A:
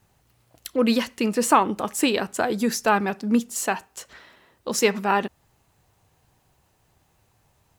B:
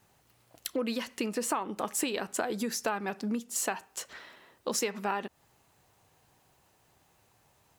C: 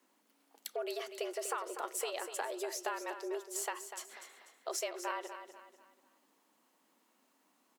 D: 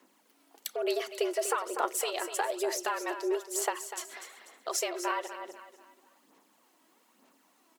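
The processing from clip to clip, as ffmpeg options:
ffmpeg -i in.wav -af "acompressor=threshold=-27dB:ratio=10,lowshelf=frequency=120:gain=-11.5" out.wav
ffmpeg -i in.wav -filter_complex "[0:a]afreqshift=160,asplit=2[link_01][link_02];[link_02]aecho=0:1:245|490|735|980:0.316|0.117|0.0433|0.016[link_03];[link_01][link_03]amix=inputs=2:normalize=0,volume=-7dB" out.wav
ffmpeg -i in.wav -af "aphaser=in_gain=1:out_gain=1:delay=3.1:decay=0.45:speed=1.1:type=sinusoidal,volume=5.5dB" out.wav

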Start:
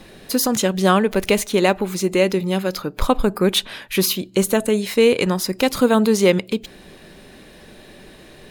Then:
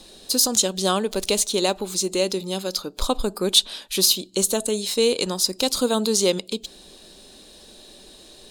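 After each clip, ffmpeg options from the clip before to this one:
ffmpeg -i in.wav -af "equalizer=frequency=125:width_type=o:width=1:gain=-12,equalizer=frequency=2000:width_type=o:width=1:gain=-11,equalizer=frequency=4000:width_type=o:width=1:gain=10,equalizer=frequency=8000:width_type=o:width=1:gain=10,volume=-4.5dB" out.wav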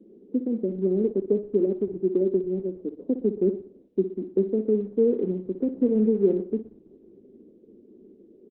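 ffmpeg -i in.wav -filter_complex "[0:a]asuperpass=centerf=290:order=8:qfactor=1.1,asplit=2[link_01][link_02];[link_02]aecho=0:1:60|120|180|240|300:0.266|0.122|0.0563|0.0259|0.0119[link_03];[link_01][link_03]amix=inputs=2:normalize=0,volume=3dB" -ar 48000 -c:a libopus -b:a 8k out.opus

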